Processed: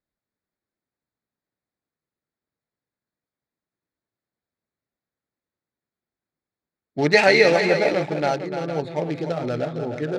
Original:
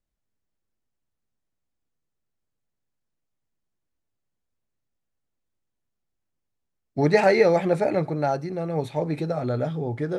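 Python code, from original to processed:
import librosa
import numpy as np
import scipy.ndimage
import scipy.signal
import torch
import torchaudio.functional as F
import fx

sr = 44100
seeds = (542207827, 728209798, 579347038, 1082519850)

y = fx.wiener(x, sr, points=15)
y = fx.weighting(y, sr, curve='D')
y = fx.echo_multitap(y, sr, ms=(297, 456), db=(-9.0, -11.5))
y = F.gain(torch.from_numpy(y), 1.5).numpy()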